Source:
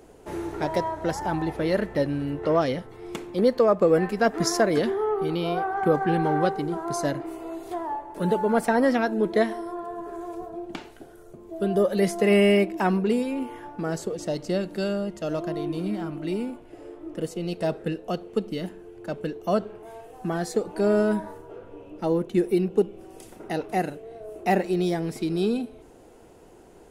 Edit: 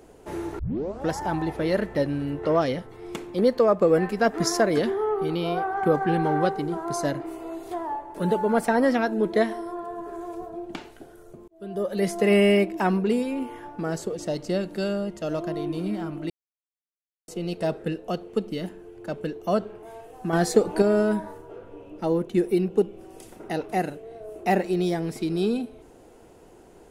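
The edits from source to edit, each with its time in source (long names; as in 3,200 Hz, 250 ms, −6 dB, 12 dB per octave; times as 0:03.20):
0:00.59: tape start 0.50 s
0:11.48–0:12.18: fade in linear
0:16.30–0:17.28: silence
0:20.33–0:20.82: clip gain +6.5 dB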